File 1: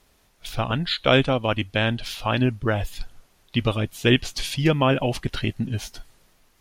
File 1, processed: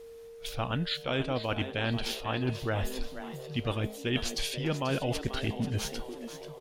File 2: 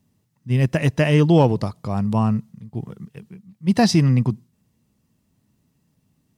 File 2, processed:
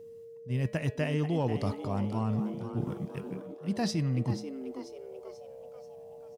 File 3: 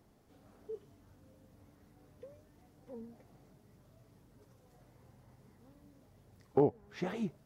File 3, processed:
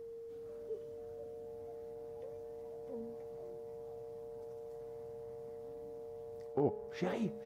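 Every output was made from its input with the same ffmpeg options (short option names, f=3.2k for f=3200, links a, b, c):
-filter_complex "[0:a]bandreject=f=211.8:t=h:w=4,bandreject=f=423.6:t=h:w=4,bandreject=f=635.4:t=h:w=4,bandreject=f=847.2:t=h:w=4,bandreject=f=1.059k:t=h:w=4,bandreject=f=1.2708k:t=h:w=4,bandreject=f=1.4826k:t=h:w=4,bandreject=f=1.6944k:t=h:w=4,bandreject=f=1.9062k:t=h:w=4,bandreject=f=2.118k:t=h:w=4,bandreject=f=2.3298k:t=h:w=4,bandreject=f=2.5416k:t=h:w=4,bandreject=f=2.7534k:t=h:w=4,bandreject=f=2.9652k:t=h:w=4,bandreject=f=3.177k:t=h:w=4,bandreject=f=3.3888k:t=h:w=4,bandreject=f=3.6006k:t=h:w=4,bandreject=f=3.8124k:t=h:w=4,bandreject=f=4.0242k:t=h:w=4,bandreject=f=4.236k:t=h:w=4,bandreject=f=4.4478k:t=h:w=4,bandreject=f=4.6596k:t=h:w=4,areverse,acompressor=threshold=-28dB:ratio=6,areverse,aeval=exprs='val(0)+0.00562*sin(2*PI*460*n/s)':c=same,asplit=6[a][b][c][d][e][f];[b]adelay=487,afreqshift=130,volume=-11.5dB[g];[c]adelay=974,afreqshift=260,volume=-18.2dB[h];[d]adelay=1461,afreqshift=390,volume=-25dB[i];[e]adelay=1948,afreqshift=520,volume=-31.7dB[j];[f]adelay=2435,afreqshift=650,volume=-38.5dB[k];[a][g][h][i][j][k]amix=inputs=6:normalize=0"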